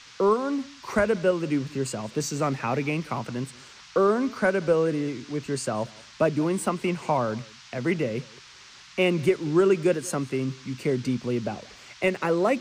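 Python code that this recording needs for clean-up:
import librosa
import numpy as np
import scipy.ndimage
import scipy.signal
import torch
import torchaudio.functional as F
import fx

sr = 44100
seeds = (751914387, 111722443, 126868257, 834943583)

y = fx.noise_reduce(x, sr, print_start_s=8.47, print_end_s=8.97, reduce_db=21.0)
y = fx.fix_echo_inverse(y, sr, delay_ms=181, level_db=-23.5)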